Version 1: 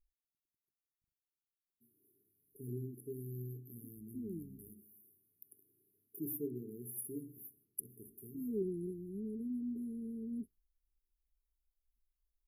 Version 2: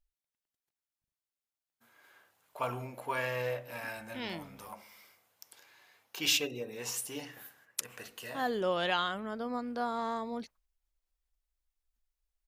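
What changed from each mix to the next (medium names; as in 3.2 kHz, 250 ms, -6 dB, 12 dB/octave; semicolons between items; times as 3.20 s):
master: remove brick-wall FIR band-stop 440–10000 Hz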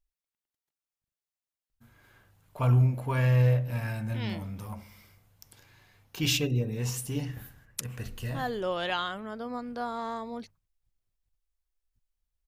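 first voice: remove high-pass 470 Hz 12 dB/octave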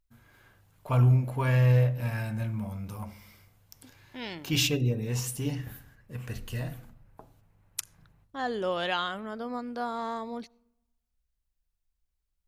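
first voice: entry -1.70 s; reverb: on, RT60 0.95 s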